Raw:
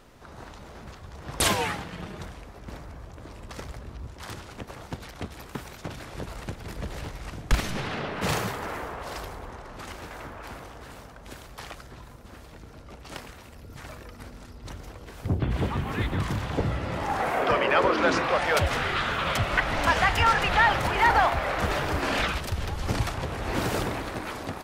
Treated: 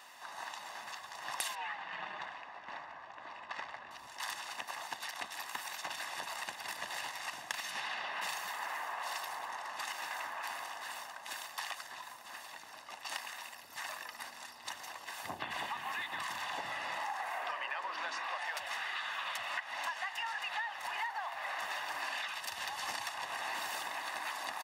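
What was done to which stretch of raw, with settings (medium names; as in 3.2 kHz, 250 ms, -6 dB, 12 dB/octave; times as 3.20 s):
1.55–3.91 s: low-pass 2.6 kHz
whole clip: high-pass 930 Hz 12 dB/octave; comb 1.1 ms, depth 64%; compression 16:1, threshold -39 dBFS; trim +3.5 dB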